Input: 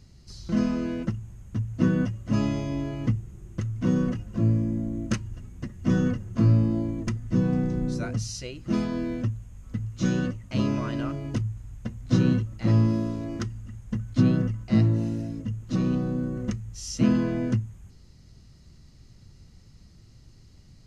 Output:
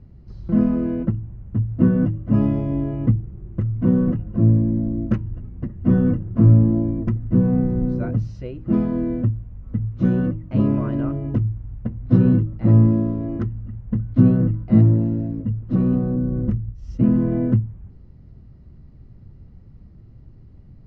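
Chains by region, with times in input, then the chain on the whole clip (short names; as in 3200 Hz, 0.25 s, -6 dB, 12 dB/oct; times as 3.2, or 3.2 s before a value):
16.16–17.32 expander -33 dBFS + low shelf 170 Hz +7.5 dB + compressor 1.5:1, threshold -28 dBFS
whole clip: LPF 2500 Hz 12 dB/oct; tilt shelf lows +8.5 dB, about 1300 Hz; de-hum 158.6 Hz, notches 2; gain -1 dB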